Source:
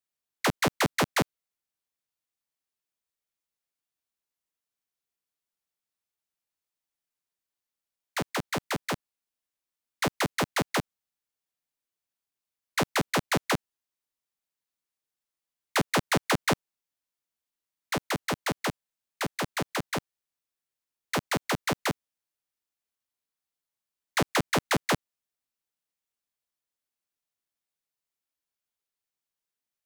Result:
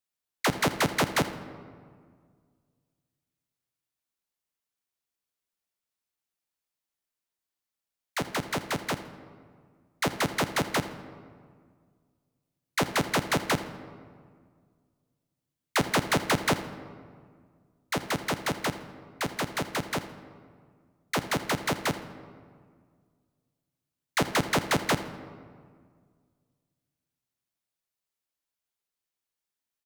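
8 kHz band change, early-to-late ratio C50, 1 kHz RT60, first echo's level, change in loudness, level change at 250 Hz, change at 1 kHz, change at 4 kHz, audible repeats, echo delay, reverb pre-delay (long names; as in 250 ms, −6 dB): +0.5 dB, 11.5 dB, 1.8 s, −17.5 dB, +0.5 dB, +0.5 dB, +0.5 dB, +0.5 dB, 1, 82 ms, 3 ms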